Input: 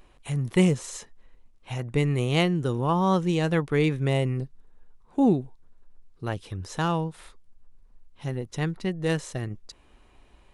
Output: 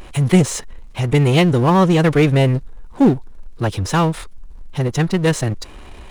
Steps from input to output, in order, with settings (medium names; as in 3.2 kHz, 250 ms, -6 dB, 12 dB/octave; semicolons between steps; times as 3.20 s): time stretch by phase-locked vocoder 0.58×; power-law waveshaper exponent 0.7; trim +6.5 dB